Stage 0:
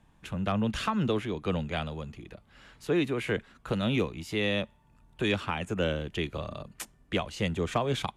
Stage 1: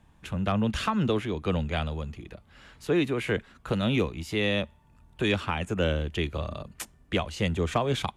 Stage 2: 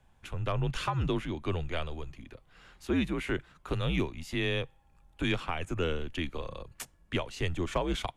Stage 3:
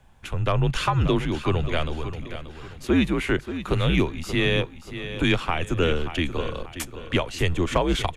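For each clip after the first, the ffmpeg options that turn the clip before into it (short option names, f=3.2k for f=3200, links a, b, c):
-af "equalizer=f=76:w=3.8:g=7.5,volume=2dB"
-af "afreqshift=-82,volume=-4dB"
-af "aecho=1:1:582|1164|1746|2328:0.266|0.101|0.0384|0.0146,volume=8.5dB"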